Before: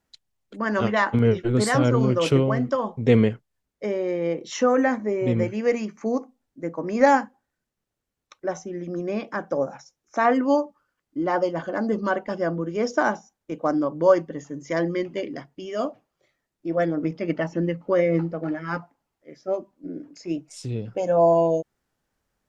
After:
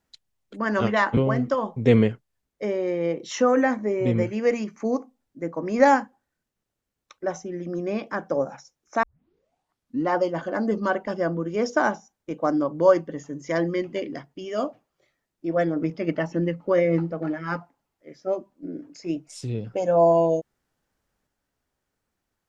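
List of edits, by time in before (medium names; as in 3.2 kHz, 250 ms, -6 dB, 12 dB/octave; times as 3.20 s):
1.17–2.38 s: delete
10.24 s: tape start 1.06 s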